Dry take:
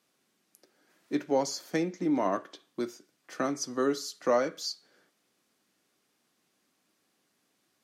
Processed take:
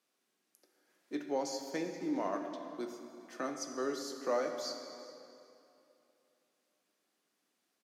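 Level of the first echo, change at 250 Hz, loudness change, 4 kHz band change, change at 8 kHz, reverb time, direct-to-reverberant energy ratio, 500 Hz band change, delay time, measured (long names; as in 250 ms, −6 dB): −20.5 dB, −7.5 dB, −7.0 dB, −6.5 dB, −6.5 dB, 2.8 s, 5.0 dB, −6.5 dB, 401 ms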